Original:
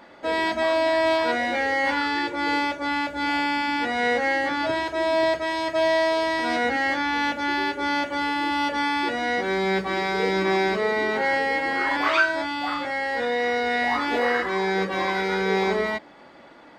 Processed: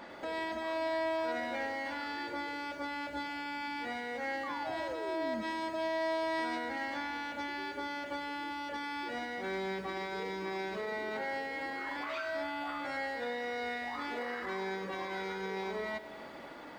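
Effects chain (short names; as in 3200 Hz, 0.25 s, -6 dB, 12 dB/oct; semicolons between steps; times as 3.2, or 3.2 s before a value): compressor, threshold -33 dBFS, peak gain reduction 16.5 dB; 4.43–5.43 painted sound fall 210–1200 Hz -38 dBFS; 12.02–12.97 doubler 14 ms -3.5 dB; limiter -29.5 dBFS, peak gain reduction 9 dB; lo-fi delay 96 ms, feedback 80%, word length 10-bit, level -14 dB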